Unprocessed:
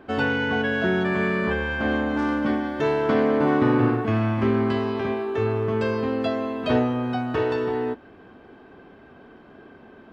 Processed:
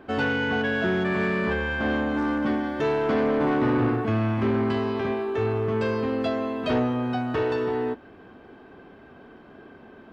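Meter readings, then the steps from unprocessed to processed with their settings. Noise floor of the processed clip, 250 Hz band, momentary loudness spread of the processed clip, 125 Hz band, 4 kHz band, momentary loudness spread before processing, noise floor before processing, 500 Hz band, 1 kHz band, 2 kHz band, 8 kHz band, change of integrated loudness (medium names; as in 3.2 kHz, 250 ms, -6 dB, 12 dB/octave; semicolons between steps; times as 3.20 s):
-49 dBFS, -2.0 dB, 4 LU, -1.5 dB, -1.0 dB, 6 LU, -49 dBFS, -1.5 dB, -1.5 dB, -1.5 dB, no reading, -1.5 dB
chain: saturation -16.5 dBFS, distortion -16 dB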